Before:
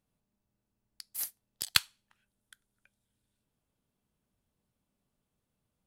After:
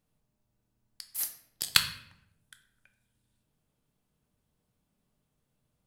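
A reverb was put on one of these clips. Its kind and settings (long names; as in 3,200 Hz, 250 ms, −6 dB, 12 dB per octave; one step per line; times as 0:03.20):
rectangular room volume 180 cubic metres, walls mixed, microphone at 0.48 metres
level +2.5 dB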